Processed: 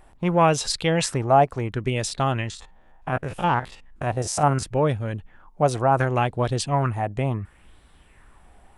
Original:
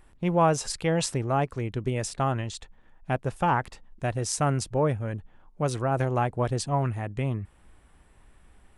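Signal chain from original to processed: 2.5–4.63 stepped spectrum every 50 ms; LFO bell 0.7 Hz 680–4000 Hz +10 dB; gain +3 dB

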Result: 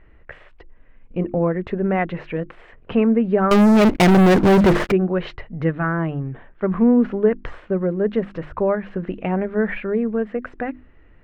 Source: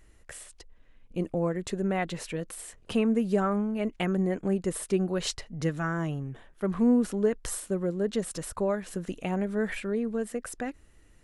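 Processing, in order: LPF 2400 Hz 24 dB/oct; notches 50/100/150/200/250/300/350 Hz; 3.51–4.92 sample leveller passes 5; gain +8.5 dB

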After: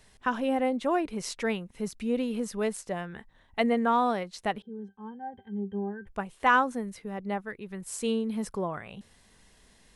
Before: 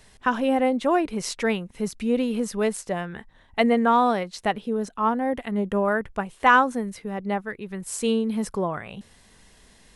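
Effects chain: 4.62–6.07 octave resonator G, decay 0.12 s; gain -5.5 dB

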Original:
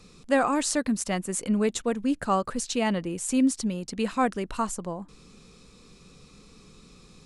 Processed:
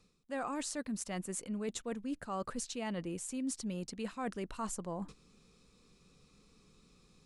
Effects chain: gate -45 dBFS, range -14 dB; reverse; compressor 5:1, threshold -39 dBFS, peak gain reduction 19.5 dB; reverse; gain +1.5 dB

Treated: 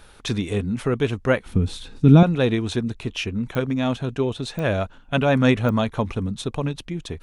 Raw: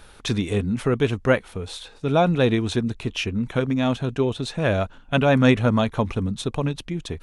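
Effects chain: 1.46–2.23 resonant low shelf 370 Hz +12.5 dB, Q 1.5; pops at 3.55/4.59/5.69, -16 dBFS; gain -1 dB

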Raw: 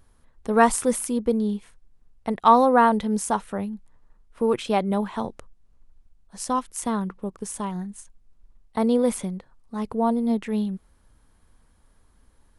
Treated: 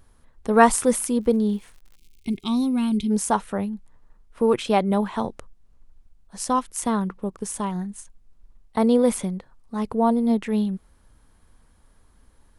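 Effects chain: 1.2–2.65 crackle 130/s -45 dBFS; 1.96–3.1 spectral gain 420–2100 Hz -24 dB; gain +2.5 dB

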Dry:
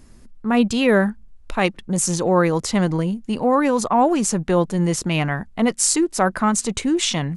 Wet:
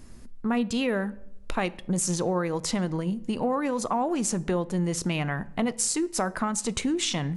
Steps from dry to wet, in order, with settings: compressor, threshold -24 dBFS, peak gain reduction 12 dB; on a send: reverb RT60 0.90 s, pre-delay 6 ms, DRR 17 dB

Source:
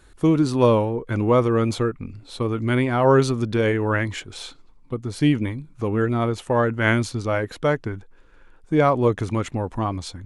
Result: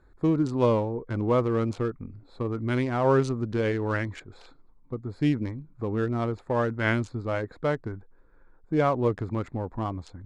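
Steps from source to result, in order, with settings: Wiener smoothing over 15 samples; LPF 9300 Hz 24 dB/oct; gain -5.5 dB

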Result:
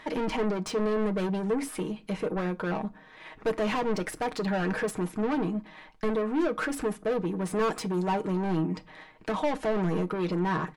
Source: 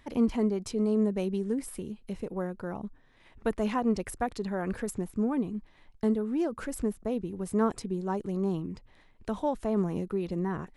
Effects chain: 7.63–8.12 high shelf 7500 Hz +11 dB; overdrive pedal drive 29 dB, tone 2100 Hz, clips at -14 dBFS; comb 6.4 ms, depth 58%; on a send: reverb RT60 0.35 s, pre-delay 3 ms, DRR 14 dB; on the sum: gain -6.5 dB

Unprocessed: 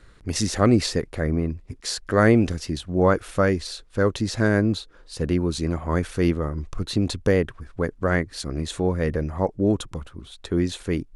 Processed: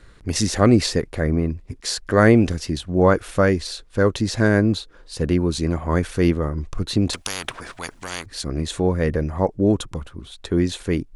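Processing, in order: notch 1300 Hz, Q 24; 7.13–8.26 spectral compressor 10:1; gain +3 dB

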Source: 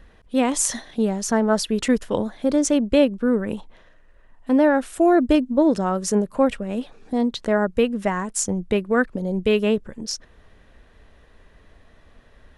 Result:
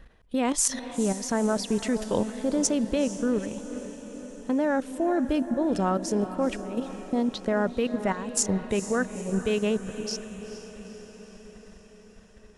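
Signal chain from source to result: level quantiser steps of 12 dB; diffused feedback echo 0.454 s, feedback 63%, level -12 dB; dynamic EQ 5200 Hz, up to +4 dB, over -49 dBFS, Q 2.4

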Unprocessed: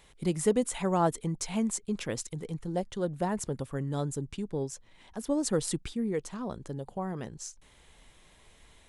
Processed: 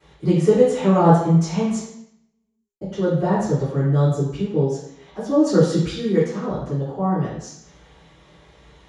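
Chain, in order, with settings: 1.8–2.81 mute; 5.81–6.24 high shelf 2800 Hz +11.5 dB; reverb RT60 0.70 s, pre-delay 3 ms, DRR -19 dB; gain -11.5 dB

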